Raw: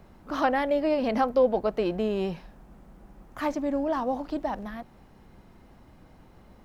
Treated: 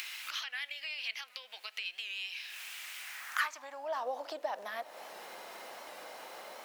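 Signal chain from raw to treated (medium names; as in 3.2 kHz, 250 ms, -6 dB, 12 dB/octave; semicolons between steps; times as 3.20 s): on a send at -22 dB: reverberation RT60 1.8 s, pre-delay 5 ms; on the sum: compression 6:1, threshold -43 dBFS, peak gain reduction 23.5 dB; high-pass sweep 2.5 kHz -> 550 Hz, 2.99–4.07 s; upward compressor, threshold -47 dBFS; tilt shelf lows -9 dB, about 1.1 kHz; warped record 78 rpm, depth 100 cents; trim +7.5 dB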